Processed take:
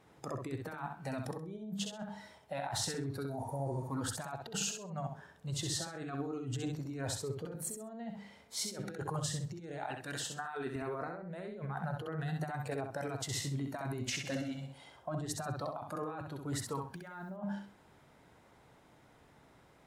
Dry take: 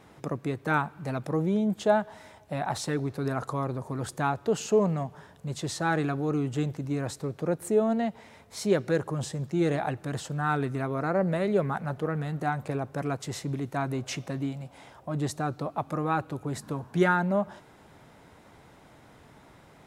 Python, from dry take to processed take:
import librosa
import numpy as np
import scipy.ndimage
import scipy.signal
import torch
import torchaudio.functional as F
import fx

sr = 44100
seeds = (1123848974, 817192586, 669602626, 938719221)

y = fx.spec_repair(x, sr, seeds[0], start_s=3.29, length_s=0.55, low_hz=850.0, high_hz=9600.0, source='after')
y = fx.highpass(y, sr, hz=220.0, slope=6, at=(9.88, 10.76))
y = fx.noise_reduce_blind(y, sr, reduce_db=10)
y = fx.hum_notches(y, sr, base_hz=50, count=6)
y = fx.over_compress(y, sr, threshold_db=-36.0, ratio=-1.0)
y = fx.room_flutter(y, sr, wall_m=10.9, rt60_s=0.71, at=(14.24, 14.65), fade=0.02)
y = fx.mod_noise(y, sr, seeds[1], snr_db=34, at=(16.87, 17.3))
y = fx.echo_feedback(y, sr, ms=65, feedback_pct=23, wet_db=-5)
y = y * librosa.db_to_amplitude(-5.0)